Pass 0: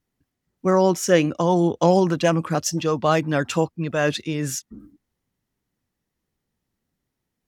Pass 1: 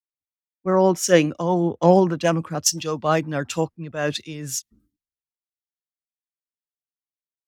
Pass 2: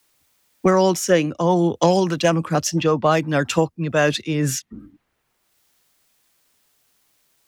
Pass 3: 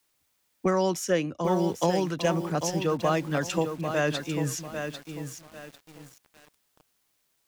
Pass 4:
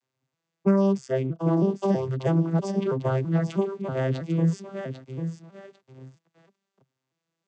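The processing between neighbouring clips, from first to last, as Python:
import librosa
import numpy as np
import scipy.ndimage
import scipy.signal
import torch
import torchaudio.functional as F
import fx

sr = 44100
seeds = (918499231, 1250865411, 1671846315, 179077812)

y1 = fx.band_widen(x, sr, depth_pct=100)
y1 = F.gain(torch.from_numpy(y1), -1.5).numpy()
y2 = fx.band_squash(y1, sr, depth_pct=100)
y2 = F.gain(torch.from_numpy(y2), 2.0).numpy()
y3 = fx.echo_crushed(y2, sr, ms=796, feedback_pct=35, bits=6, wet_db=-7.0)
y3 = F.gain(torch.from_numpy(y3), -8.5).numpy()
y4 = fx.vocoder_arp(y3, sr, chord='major triad', root=48, every_ms=323)
y4 = F.gain(torch.from_numpy(y4), 3.5).numpy()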